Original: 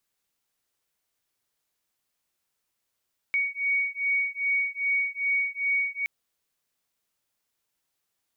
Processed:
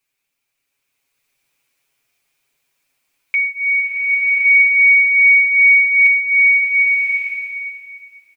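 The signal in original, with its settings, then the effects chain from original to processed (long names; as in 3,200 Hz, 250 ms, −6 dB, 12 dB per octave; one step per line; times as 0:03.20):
two tones that beat 2,240 Hz, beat 2.5 Hz, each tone −27 dBFS 2.72 s
parametric band 2,400 Hz +13 dB 0.31 octaves
comb filter 7.3 ms, depth 84%
slow-attack reverb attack 1,160 ms, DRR −6 dB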